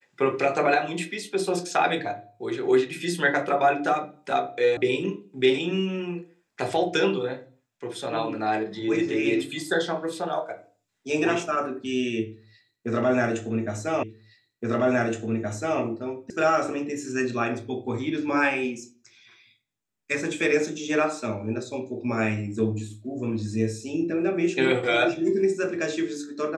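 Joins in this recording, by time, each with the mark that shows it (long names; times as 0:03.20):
0:04.77: cut off before it has died away
0:14.03: the same again, the last 1.77 s
0:16.30: cut off before it has died away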